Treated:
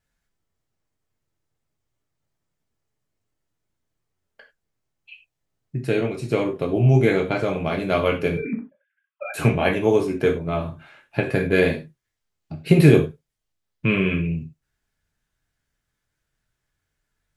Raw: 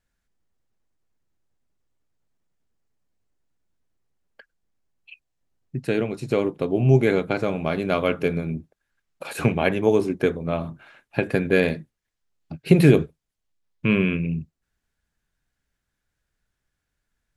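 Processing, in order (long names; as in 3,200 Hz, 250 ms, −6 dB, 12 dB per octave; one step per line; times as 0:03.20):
0:08.37–0:09.34: three sine waves on the formant tracks
reverb whose tail is shaped and stops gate 120 ms falling, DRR 0.5 dB
level −1 dB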